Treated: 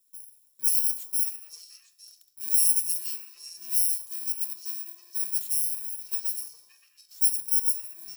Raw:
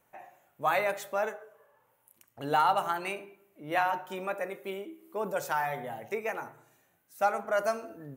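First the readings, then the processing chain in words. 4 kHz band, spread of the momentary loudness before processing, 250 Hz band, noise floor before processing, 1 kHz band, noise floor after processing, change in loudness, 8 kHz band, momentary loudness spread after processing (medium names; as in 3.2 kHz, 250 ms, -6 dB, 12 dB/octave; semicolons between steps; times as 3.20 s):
+6.5 dB, 14 LU, under -15 dB, -71 dBFS, under -30 dB, -65 dBFS, +7.0 dB, +23.0 dB, 17 LU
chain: bit-reversed sample order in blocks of 64 samples; pre-emphasis filter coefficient 0.9; repeats whose band climbs or falls 286 ms, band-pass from 710 Hz, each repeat 1.4 oct, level -2 dB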